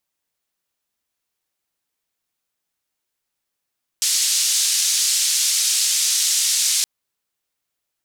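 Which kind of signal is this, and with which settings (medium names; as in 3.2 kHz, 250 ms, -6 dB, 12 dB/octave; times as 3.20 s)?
noise band 5.2–6.7 kHz, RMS -19 dBFS 2.82 s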